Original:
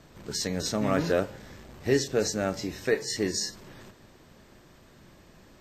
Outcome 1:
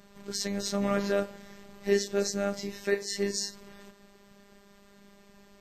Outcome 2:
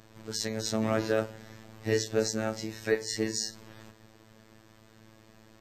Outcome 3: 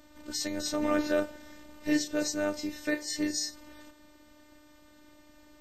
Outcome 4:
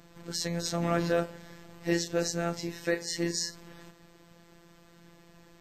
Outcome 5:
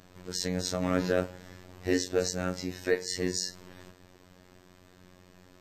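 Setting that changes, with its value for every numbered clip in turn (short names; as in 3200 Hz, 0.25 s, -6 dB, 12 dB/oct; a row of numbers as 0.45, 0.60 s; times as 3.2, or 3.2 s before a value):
robotiser, frequency: 200, 110, 300, 170, 91 Hz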